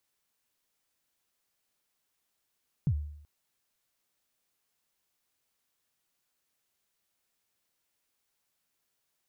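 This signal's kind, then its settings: kick drum length 0.38 s, from 170 Hz, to 74 Hz, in 67 ms, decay 0.71 s, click off, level -21 dB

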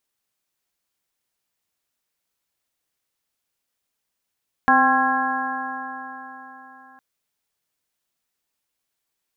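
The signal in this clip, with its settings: stretched partials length 2.31 s, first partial 258 Hz, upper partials -11/5/4.5/-3/4 dB, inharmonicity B 0.0038, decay 3.93 s, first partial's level -21 dB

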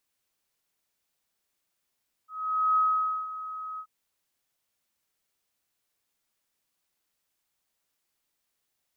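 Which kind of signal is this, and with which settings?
ADSR sine 1.27 kHz, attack 484 ms, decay 506 ms, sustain -14.5 dB, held 1.51 s, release 70 ms -19.5 dBFS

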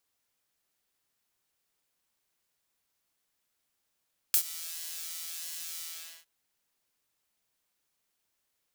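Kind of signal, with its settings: synth patch with pulse-width modulation E4, sub 0 dB, noise -7 dB, filter highpass, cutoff 2.5 kHz, Q 0.72, filter envelope 2 oct, filter decay 0.13 s, filter sustain 50%, attack 1.9 ms, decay 0.08 s, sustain -21 dB, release 0.45 s, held 1.46 s, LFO 1.5 Hz, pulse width 33%, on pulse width 6%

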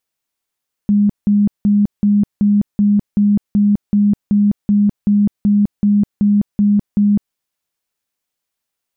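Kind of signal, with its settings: tone bursts 205 Hz, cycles 42, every 0.38 s, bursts 17, -9 dBFS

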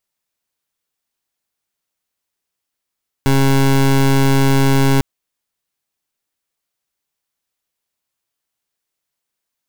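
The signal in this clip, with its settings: pulse 136 Hz, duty 22% -12 dBFS 1.75 s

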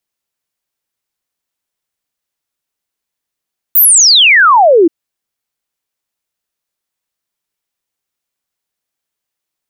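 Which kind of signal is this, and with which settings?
log sweep 16 kHz -> 310 Hz 1.13 s -3 dBFS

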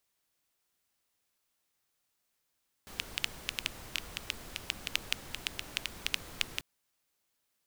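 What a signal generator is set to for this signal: rain from filtered ticks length 3.74 s, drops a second 6.5, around 2.8 kHz, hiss -7 dB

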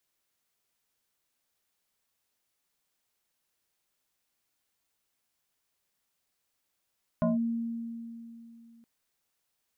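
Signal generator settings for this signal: FM tone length 1.62 s, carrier 231 Hz, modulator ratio 1.75, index 1.5, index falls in 0.16 s linear, decay 2.98 s, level -22 dB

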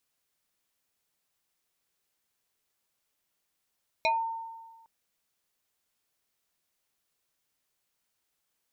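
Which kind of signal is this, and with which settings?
FM tone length 0.81 s, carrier 908 Hz, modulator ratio 1.71, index 2.1, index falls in 0.21 s exponential, decay 1.41 s, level -21 dB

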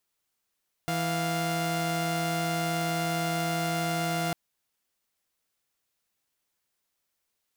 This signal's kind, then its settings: chord E3/F5 saw, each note -27 dBFS 3.45 s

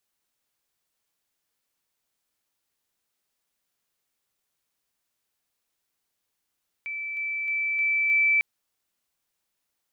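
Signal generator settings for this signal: level ladder 2.32 kHz -30 dBFS, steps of 3 dB, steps 5, 0.31 s 0.00 s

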